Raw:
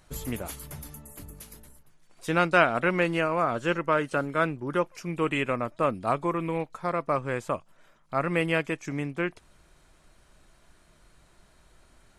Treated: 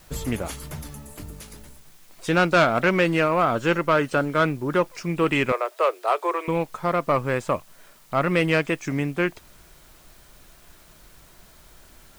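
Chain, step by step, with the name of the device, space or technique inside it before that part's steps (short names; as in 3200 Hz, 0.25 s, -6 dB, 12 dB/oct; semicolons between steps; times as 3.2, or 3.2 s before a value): compact cassette (soft clip -17 dBFS, distortion -14 dB; LPF 8900 Hz; wow and flutter; white noise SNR 31 dB); 5.52–6.48 steep high-pass 370 Hz 72 dB/oct; gain +6.5 dB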